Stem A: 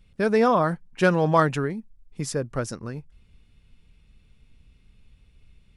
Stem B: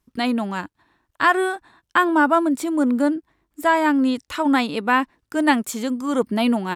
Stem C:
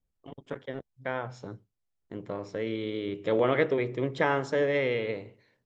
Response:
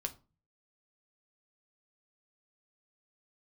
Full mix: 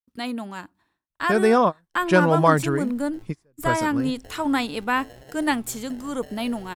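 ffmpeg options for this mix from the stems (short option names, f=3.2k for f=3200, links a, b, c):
-filter_complex "[0:a]adelay=1100,volume=2dB[a];[1:a]agate=range=-33dB:threshold=-55dB:ratio=3:detection=peak,highshelf=f=4.8k:g=7.5,dynaudnorm=f=280:g=11:m=11.5dB,volume=-10dB,asplit=3[b][c][d];[c]volume=-13.5dB[e];[2:a]asubboost=boost=11.5:cutoff=74,acompressor=threshold=-34dB:ratio=5,acrusher=samples=37:mix=1:aa=0.000001,adelay=1700,volume=-10.5dB[f];[d]apad=whole_len=302699[g];[a][g]sidechaingate=range=-38dB:threshold=-50dB:ratio=16:detection=peak[h];[3:a]atrim=start_sample=2205[i];[e][i]afir=irnorm=-1:irlink=0[j];[h][b][f][j]amix=inputs=4:normalize=0"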